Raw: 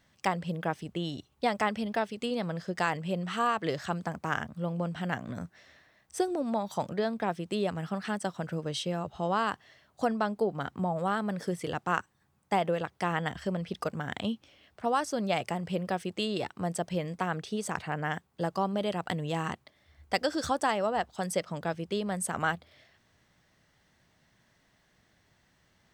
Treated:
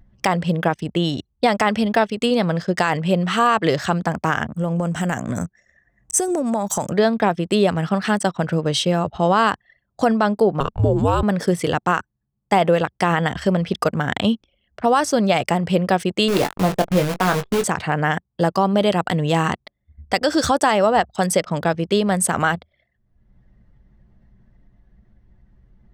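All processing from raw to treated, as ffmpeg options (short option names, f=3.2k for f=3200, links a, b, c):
-filter_complex "[0:a]asettb=1/sr,asplit=3[a][b][c];[a]atrim=end=4.484[d];[b]atrim=start=4.48:end=6.92,asetpts=PTS-STARTPTS,afade=t=in:d=0.004:c=qsin,afade=t=out:st=2.436:d=0.004:c=qsin,acompressor=threshold=-31dB:ratio=4:attack=3.2:release=140:knee=1:detection=peak,highshelf=f=5.5k:t=q:w=3:g=8[e];[c]atrim=start=6.916[f];[d][e]acrossfade=d=0.004:c1=hsin:c2=qsin[g];[g][f]acrossfade=d=0.004:c1=qsin:c2=hsin,asettb=1/sr,asplit=3[h][i][j];[h]atrim=end=10.604[k];[i]atrim=start=10.6:end=11.23,asetpts=PTS-STARTPTS,afade=t=in:d=0.004:c=qsin,afade=t=out:st=0.626:d=0.004:c=qsin,afreqshift=-290,equalizer=f=2k:t=o:w=0.38:g=-10.5[l];[j]atrim=start=11.226[m];[k][l]acrossfade=d=0.004:c1=hsin:c2=qsin[n];[n][m]acrossfade=d=0.004:c1=qsin:c2=hsin,asettb=1/sr,asplit=3[o][p][q];[o]atrim=end=16.284[r];[p]atrim=start=16.28:end=17.64,asetpts=PTS-STARTPTS,afade=t=in:d=0.004:c=qsin,afade=t=out:st=1.356:d=0.004:c=qsin,adynamicsmooth=sensitivity=5.5:basefreq=940,acrusher=bits=7:dc=4:mix=0:aa=0.000001,asplit=2[s][t];[t]adelay=21,volume=-7dB[u];[s][u]amix=inputs=2:normalize=0,atrim=end_sample=59976[v];[q]atrim=start=17.636[w];[r][v]acrossfade=d=0.004:c1=hsin:c2=qsin[x];[x][w]acrossfade=d=0.004:c1=qsin:c2=hsin,anlmdn=0.00398,acompressor=mode=upward:threshold=-49dB:ratio=2.5,alimiter=level_in=18.5dB:limit=-1dB:release=50:level=0:latency=1,volume=-5dB"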